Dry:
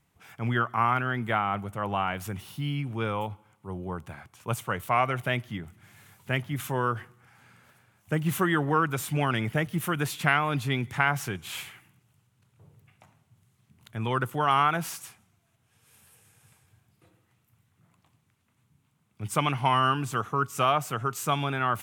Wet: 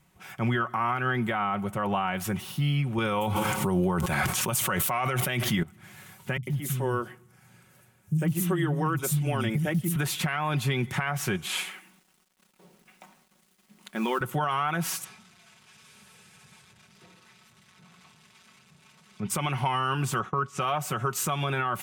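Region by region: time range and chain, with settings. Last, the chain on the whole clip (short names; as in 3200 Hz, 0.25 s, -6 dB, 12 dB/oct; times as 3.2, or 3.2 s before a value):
2.98–5.63 high shelf 3500 Hz +7.5 dB + fast leveller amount 100%
6.37–9.96 bell 1300 Hz -10.5 dB 2.7 oct + three bands offset in time lows, highs, mids 60/100 ms, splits 210/3800 Hz
11.46–14.21 brick-wall FIR band-pass 170–12000 Hz + companded quantiser 6-bit
15.04–19.3 switching spikes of -37 dBFS + tape spacing loss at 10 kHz 27 dB + comb 4.6 ms, depth 48%
20.19–20.61 expander -38 dBFS + air absorption 76 m
whole clip: comb 5.4 ms, depth 50%; compressor 5:1, threshold -27 dBFS; limiter -22.5 dBFS; gain +5.5 dB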